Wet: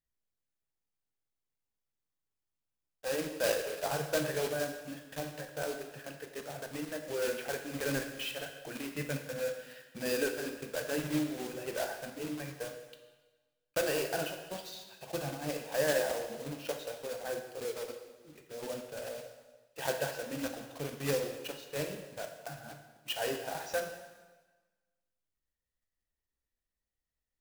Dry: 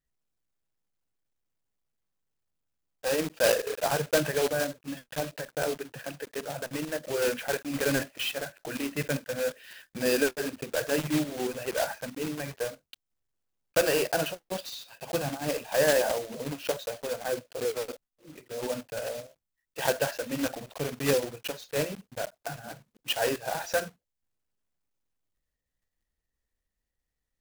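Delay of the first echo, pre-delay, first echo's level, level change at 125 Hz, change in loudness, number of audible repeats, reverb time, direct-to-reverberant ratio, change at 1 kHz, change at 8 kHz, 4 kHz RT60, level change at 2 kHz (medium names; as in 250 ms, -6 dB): no echo, 5 ms, no echo, -5.0 dB, -6.0 dB, no echo, 1.3 s, 5.0 dB, -6.5 dB, -6.5 dB, 1.2 s, -6.0 dB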